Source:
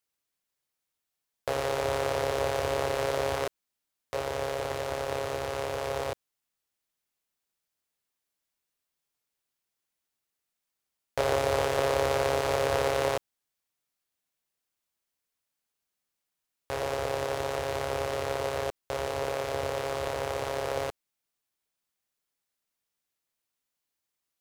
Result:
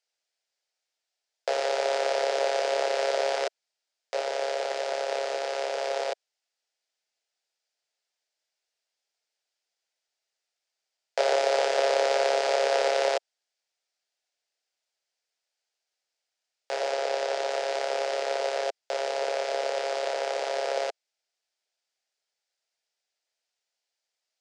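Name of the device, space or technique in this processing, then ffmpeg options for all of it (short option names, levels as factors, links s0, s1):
phone speaker on a table: -filter_complex "[0:a]asettb=1/sr,asplit=3[s0][s1][s2];[s0]atrim=end=16.924[s3];[s1]atrim=start=16.92:end=17.5,asetpts=PTS-STARTPTS,afade=t=in:d=0.004:c=qsin,afade=t=out:st=0.576:d=0.004:c=qsin,lowpass=9600[s4];[s2]atrim=start=17.496[s5];[s3][s4]acrossfade=d=0.004:c1=hsin:c2=qsin[s6];[s6][s5]acrossfade=d=0.004:c1=qsin:c2=hsin,highpass=f=440:w=0.5412,highpass=f=440:w=1.3066,equalizer=f=670:t=q:w=4:g=4,equalizer=f=1100:t=q:w=4:g=-10,equalizer=f=4900:t=q:w=4:g=5,lowpass=f=7600:w=0.5412,lowpass=f=7600:w=1.3066,volume=1.41"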